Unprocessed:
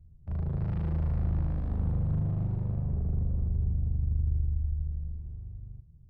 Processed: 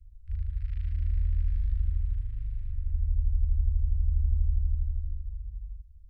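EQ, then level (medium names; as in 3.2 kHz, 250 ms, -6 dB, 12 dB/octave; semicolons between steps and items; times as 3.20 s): inverse Chebyshev band-stop 180–720 Hz, stop band 60 dB; bass shelf 76 Hz +10 dB; 0.0 dB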